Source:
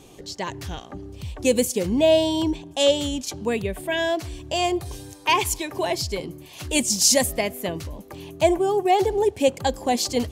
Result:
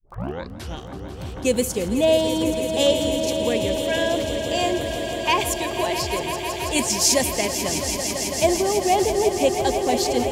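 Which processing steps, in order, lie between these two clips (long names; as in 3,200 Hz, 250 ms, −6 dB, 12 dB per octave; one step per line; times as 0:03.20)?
turntable start at the beginning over 0.75 s
echo that builds up and dies away 165 ms, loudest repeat 5, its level −11 dB
surface crackle 28 per second −36 dBFS
level −1 dB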